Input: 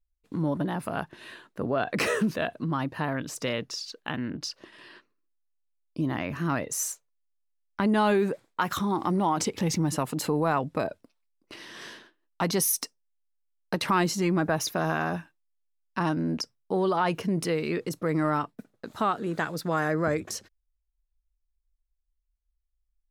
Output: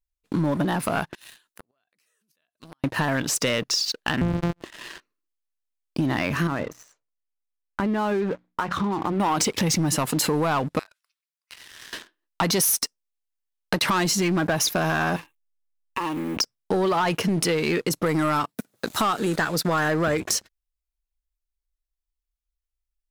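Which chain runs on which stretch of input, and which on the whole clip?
1.15–2.84 s: pre-emphasis filter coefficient 0.9 + compression 3:1, threshold -43 dBFS + inverted gate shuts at -38 dBFS, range -25 dB
4.21–4.62 s: sorted samples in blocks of 256 samples + low-pass 1.4 kHz 6 dB/octave + bass shelf 470 Hz +8.5 dB
6.47–9.20 s: hum notches 60/120/180/240/300 Hz + compression 2.5:1, threshold -31 dBFS + tape spacing loss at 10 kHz 34 dB
10.79–11.93 s: high-pass 1.2 kHz 24 dB/octave + compression 2:1, threshold -56 dBFS
15.16–16.37 s: companding laws mixed up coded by mu + static phaser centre 1 kHz, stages 8 + compression, threshold -35 dBFS
18.06–19.36 s: high-pass 43 Hz + upward compressor, threshold -47 dBFS + treble shelf 5.1 kHz +10 dB
whole clip: tilt shelf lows -3 dB, about 1.2 kHz; waveshaping leveller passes 3; compression 4:1, threshold -23 dBFS; trim +2 dB

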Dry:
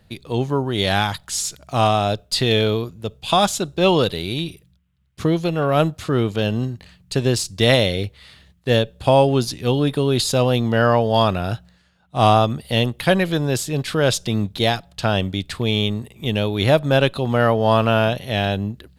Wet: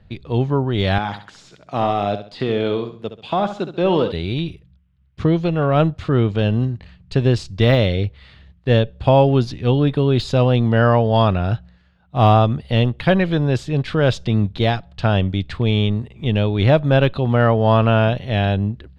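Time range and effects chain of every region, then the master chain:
0.98–4.12 s: high-pass 210 Hz + de-esser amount 80% + flutter echo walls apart 11.6 m, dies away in 0.41 s
whole clip: low-pass 3.3 kHz 12 dB/octave; bass shelf 120 Hz +10 dB; de-esser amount 60%

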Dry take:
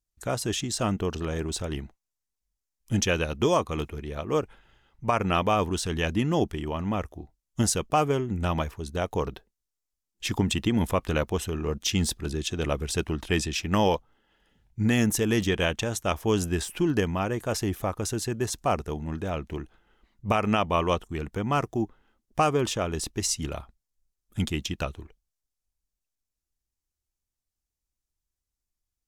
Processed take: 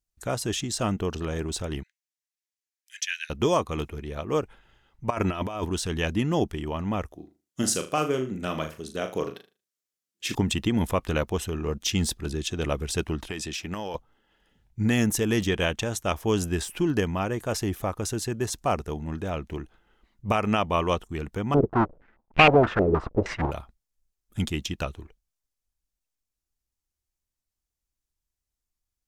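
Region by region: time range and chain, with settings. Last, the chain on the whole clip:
1.83–3.30 s: Chebyshev high-pass 1.6 kHz, order 6 + treble shelf 6.4 kHz -6.5 dB
5.10–5.65 s: comb 3.1 ms, depth 38% + compressor with a negative ratio -27 dBFS, ratio -0.5
7.15–10.35 s: high-pass 190 Hz + peaking EQ 880 Hz -9.5 dB 0.46 oct + flutter echo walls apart 6.6 m, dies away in 0.3 s
13.28–13.95 s: bass shelf 140 Hz -10 dB + compression 12:1, threshold -28 dBFS
21.54–23.51 s: square wave that keeps the level + step-sequenced low-pass 6.4 Hz 410–2500 Hz
whole clip: none

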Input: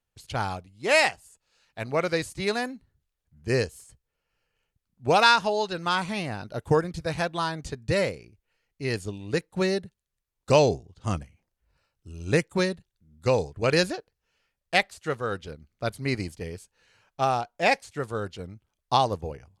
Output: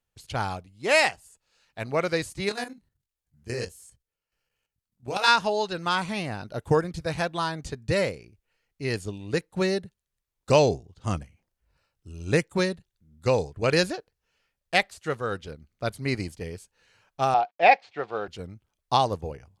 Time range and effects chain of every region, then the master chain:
2.49–5.28 s: chorus 1.4 Hz, delay 18 ms, depth 6.9 ms + treble shelf 4.4 kHz +7.5 dB + level held to a coarse grid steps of 10 dB
17.34–18.28 s: companded quantiser 6-bit + cabinet simulation 250–4100 Hz, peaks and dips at 250 Hz -6 dB, 750 Hz +10 dB, 2.4 kHz +4 dB
whole clip: none

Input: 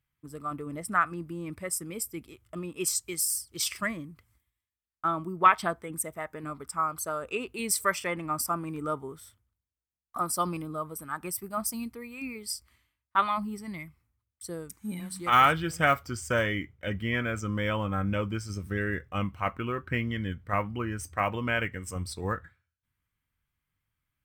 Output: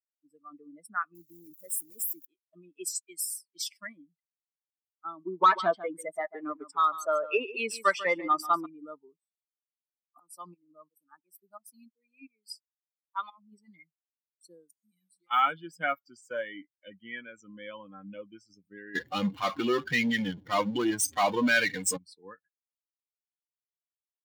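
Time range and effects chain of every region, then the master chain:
1.15–2.25 s: zero-crossing glitches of -25 dBFS + peaking EQ 2.8 kHz -12 dB 1.5 oct
5.25–8.66 s: overdrive pedal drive 22 dB, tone 1.4 kHz, clips at -8 dBFS + delay 143 ms -8 dB
9.16–13.52 s: high-pass 56 Hz + tremolo saw up 2.9 Hz, depth 85%
14.72–15.31 s: treble shelf 2.3 kHz +9 dB + compression 2.5:1, threshold -49 dBFS
18.95–21.97 s: high-pass 52 Hz 24 dB/octave + power-law waveshaper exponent 0.35
whole clip: expander on every frequency bin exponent 2; high-pass 200 Hz 24 dB/octave

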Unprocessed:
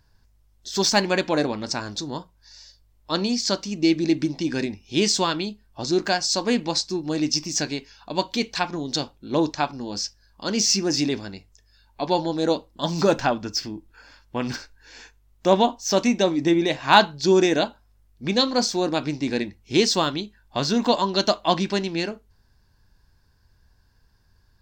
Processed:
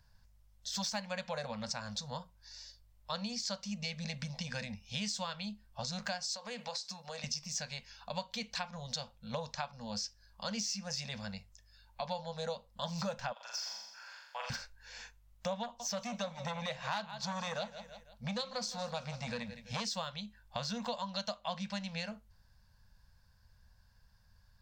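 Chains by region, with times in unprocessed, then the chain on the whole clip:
6.35–7.24 s: high-pass 310 Hz + compression, threshold -28 dBFS
13.32–14.50 s: high-pass 690 Hz 24 dB/octave + compression 2:1, threshold -34 dBFS + flutter echo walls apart 7.3 m, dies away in 0.95 s
15.63–19.85 s: feedback delay 166 ms, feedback 40%, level -17 dB + transformer saturation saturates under 1.6 kHz
whole clip: elliptic band-stop 220–500 Hz; compression 5:1, threshold -32 dBFS; trim -4 dB

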